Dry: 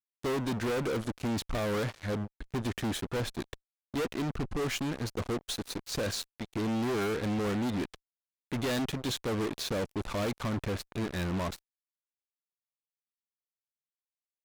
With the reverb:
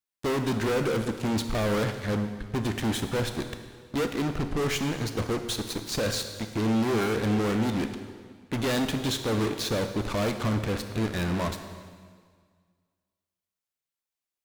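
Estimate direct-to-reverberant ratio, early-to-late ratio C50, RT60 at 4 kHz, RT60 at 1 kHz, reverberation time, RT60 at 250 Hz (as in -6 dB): 7.0 dB, 8.5 dB, 1.7 s, 1.8 s, 1.8 s, 1.8 s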